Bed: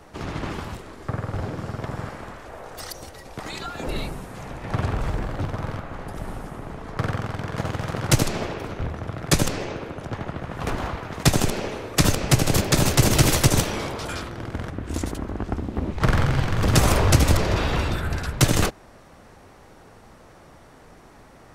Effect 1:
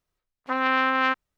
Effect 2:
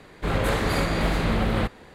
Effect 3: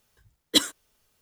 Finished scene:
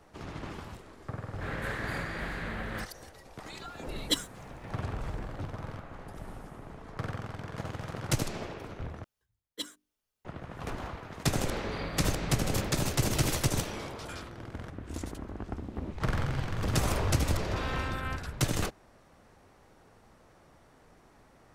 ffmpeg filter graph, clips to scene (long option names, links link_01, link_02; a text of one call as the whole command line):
ffmpeg -i bed.wav -i cue0.wav -i cue1.wav -i cue2.wav -filter_complex "[2:a]asplit=2[link_01][link_02];[3:a]asplit=2[link_03][link_04];[0:a]volume=-10.5dB[link_05];[link_01]equalizer=frequency=1700:width=2.4:gain=12[link_06];[link_04]bandreject=frequency=50:width_type=h:width=6,bandreject=frequency=100:width_type=h:width=6,bandreject=frequency=150:width_type=h:width=6,bandreject=frequency=200:width_type=h:width=6,bandreject=frequency=250:width_type=h:width=6,bandreject=frequency=300:width_type=h:width=6,bandreject=frequency=350:width_type=h:width=6,bandreject=frequency=400:width_type=h:width=6[link_07];[link_02]aresample=11025,aresample=44100[link_08];[link_05]asplit=2[link_09][link_10];[link_09]atrim=end=9.044[link_11];[link_07]atrim=end=1.21,asetpts=PTS-STARTPTS,volume=-17.5dB[link_12];[link_10]atrim=start=10.246[link_13];[link_06]atrim=end=1.94,asetpts=PTS-STARTPTS,volume=-15dB,afade=type=in:duration=0.004:curve=hsin,afade=type=out:start_time=1.936:duration=0.004:curve=hsin,adelay=1180[link_14];[link_03]atrim=end=1.21,asetpts=PTS-STARTPTS,volume=-8dB,afade=type=in:duration=0.004:curve=hsin,afade=type=out:start_time=1.206:duration=0.004:curve=hsin,adelay=3560[link_15];[link_08]atrim=end=1.94,asetpts=PTS-STARTPTS,volume=-13dB,afade=type=in:duration=0.004:curve=hsin,afade=type=out:start_time=1.936:duration=0.004:curve=hsin,adelay=11030[link_16];[1:a]atrim=end=1.37,asetpts=PTS-STARTPTS,volume=-16.5dB,afade=type=in:duration=0.004:curve=hsin,afade=type=out:start_time=1.366:duration=0.004:curve=hsin,adelay=17030[link_17];[link_11][link_12]acrossfade=duration=0.004:curve1=hsin:curve2=hsin[link_18];[link_18][link_13]acrossfade=duration=0.004:curve1=hsin:curve2=hsin[link_19];[link_19][link_14][link_15][link_16][link_17]amix=inputs=5:normalize=0" out.wav